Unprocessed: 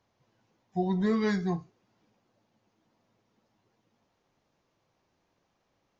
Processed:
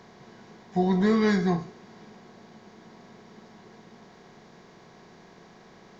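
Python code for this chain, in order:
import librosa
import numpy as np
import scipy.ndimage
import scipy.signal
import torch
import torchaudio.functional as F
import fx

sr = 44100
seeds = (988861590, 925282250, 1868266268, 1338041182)

y = fx.bin_compress(x, sr, power=0.6)
y = y * librosa.db_to_amplitude(3.5)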